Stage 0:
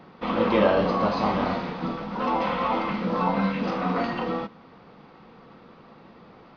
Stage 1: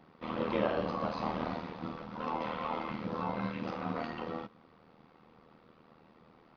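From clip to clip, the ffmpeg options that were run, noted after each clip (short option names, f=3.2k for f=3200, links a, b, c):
-af "tremolo=f=79:d=0.788,volume=-7.5dB"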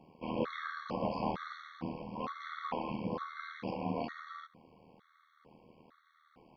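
-af "afftfilt=real='re*gt(sin(2*PI*1.1*pts/sr)*(1-2*mod(floor(b*sr/1024/1100),2)),0)':imag='im*gt(sin(2*PI*1.1*pts/sr)*(1-2*mod(floor(b*sr/1024/1100),2)),0)':win_size=1024:overlap=0.75,volume=1dB"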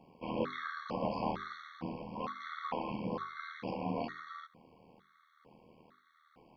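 -af "bandreject=f=50:t=h:w=6,bandreject=f=100:t=h:w=6,bandreject=f=150:t=h:w=6,bandreject=f=200:t=h:w=6,bandreject=f=250:t=h:w=6,bandreject=f=300:t=h:w=6,bandreject=f=350:t=h:w=6,bandreject=f=400:t=h:w=6"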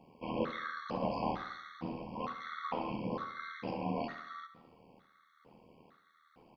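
-af "aecho=1:1:70|140|210|280|350:0.224|0.105|0.0495|0.0232|0.0109"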